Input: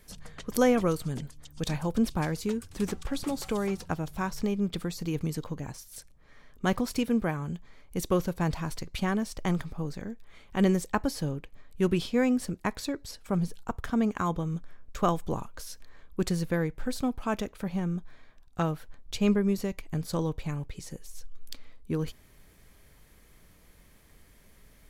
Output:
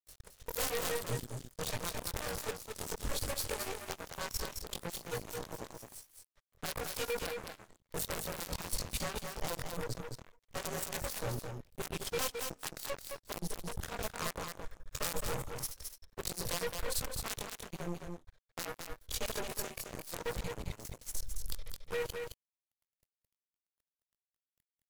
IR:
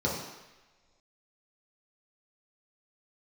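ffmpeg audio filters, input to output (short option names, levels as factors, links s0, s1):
-af "afftfilt=real='re':imag='-im':win_size=2048:overlap=0.75,bandreject=f=294.5:t=h:w=4,bandreject=f=589:t=h:w=4,bandreject=f=883.5:t=h:w=4,bandreject=f=1178:t=h:w=4,bandreject=f=1472.5:t=h:w=4,bandreject=f=1767:t=h:w=4,bandreject=f=2061.5:t=h:w=4,bandreject=f=2356:t=h:w=4,bandreject=f=2650.5:t=h:w=4,bandreject=f=2945:t=h:w=4,bandreject=f=3239.5:t=h:w=4,bandreject=f=3534:t=h:w=4,bandreject=f=3828.5:t=h:w=4,bandreject=f=4123:t=h:w=4,bandreject=f=4417.5:t=h:w=4,bandreject=f=4712:t=h:w=4,bandreject=f=5006.5:t=h:w=4,bandreject=f=5301:t=h:w=4,bandreject=f=5595.5:t=h:w=4,bandreject=f=5890:t=h:w=4,bandreject=f=6184.5:t=h:w=4,aeval=exprs='(mod(12.6*val(0)+1,2)-1)/12.6':c=same,firequalizer=gain_entry='entry(120,0);entry(230,-29);entry(470,0);entry(700,-7);entry(2300,-9);entry(3900,-6)':delay=0.05:min_phase=1,alimiter=level_in=2.66:limit=0.0631:level=0:latency=1:release=83,volume=0.376,aeval=exprs='0.0251*(cos(1*acos(clip(val(0)/0.0251,-1,1)))-cos(1*PI/2))+0.000316*(cos(3*acos(clip(val(0)/0.0251,-1,1)))-cos(3*PI/2))+0.00224*(cos(6*acos(clip(val(0)/0.0251,-1,1)))-cos(6*PI/2))+0.00794*(cos(7*acos(clip(val(0)/0.0251,-1,1)))-cos(7*PI/2))':c=same,aemphasis=mode=production:type=cd,aeval=exprs='sgn(val(0))*max(abs(val(0))-0.00316,0)':c=same,aecho=1:1:216:0.531,volume=1.68"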